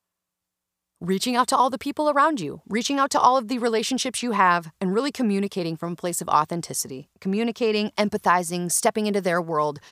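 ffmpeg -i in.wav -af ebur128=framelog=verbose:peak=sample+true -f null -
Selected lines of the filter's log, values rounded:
Integrated loudness:
  I:         -23.0 LUFS
  Threshold: -33.0 LUFS
Loudness range:
  LRA:         3.1 LU
  Threshold: -43.2 LUFS
  LRA low:   -25.0 LUFS
  LRA high:  -21.9 LUFS
Sample peak:
  Peak:       -3.4 dBFS
True peak:
  Peak:       -3.4 dBFS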